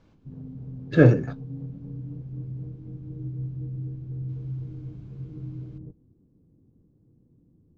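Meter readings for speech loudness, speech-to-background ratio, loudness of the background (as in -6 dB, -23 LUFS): -20.0 LUFS, 17.0 dB, -37.0 LUFS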